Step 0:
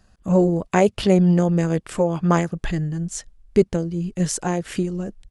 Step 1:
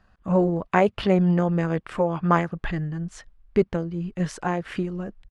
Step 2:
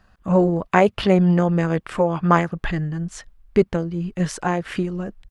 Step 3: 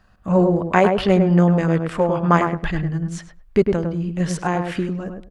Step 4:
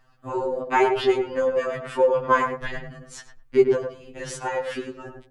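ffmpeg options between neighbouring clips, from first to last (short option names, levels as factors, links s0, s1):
-af "firequalizer=gain_entry='entry(410,0);entry(1100,7);entry(7000,-13)':delay=0.05:min_phase=1,volume=0.631"
-af "highshelf=f=5100:g=6,volume=1.5"
-filter_complex "[0:a]asplit=2[s0][s1];[s1]adelay=103,lowpass=f=1300:p=1,volume=0.631,asplit=2[s2][s3];[s3]adelay=103,lowpass=f=1300:p=1,volume=0.2,asplit=2[s4][s5];[s5]adelay=103,lowpass=f=1300:p=1,volume=0.2[s6];[s0][s2][s4][s6]amix=inputs=4:normalize=0"
-af "afftfilt=real='re*2.45*eq(mod(b,6),0)':imag='im*2.45*eq(mod(b,6),0)':win_size=2048:overlap=0.75"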